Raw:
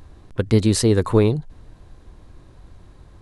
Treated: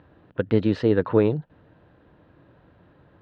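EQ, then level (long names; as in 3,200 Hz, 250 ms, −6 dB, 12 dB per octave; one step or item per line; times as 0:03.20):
loudspeaker in its box 190–2,600 Hz, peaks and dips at 230 Hz −6 dB, 380 Hz −7 dB, 760 Hz −5 dB, 1,100 Hz −8 dB, 2,200 Hz −9 dB
+2.5 dB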